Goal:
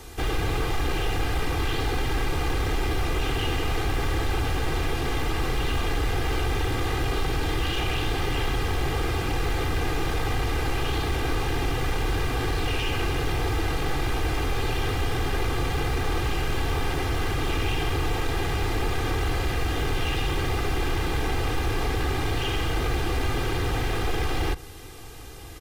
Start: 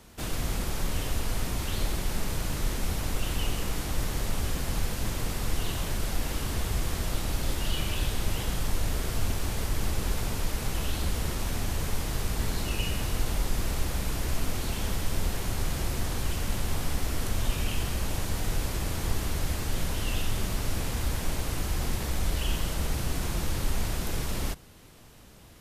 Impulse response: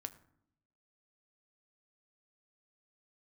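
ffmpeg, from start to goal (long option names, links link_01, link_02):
-filter_complex "[0:a]aeval=exprs='0.0316*(abs(mod(val(0)/0.0316+3,4)-2)-1)':channel_layout=same,acrossover=split=3700[link_01][link_02];[link_02]acompressor=threshold=-56dB:ratio=4:attack=1:release=60[link_03];[link_01][link_03]amix=inputs=2:normalize=0,aecho=1:1:2.5:0.74,volume=8.5dB"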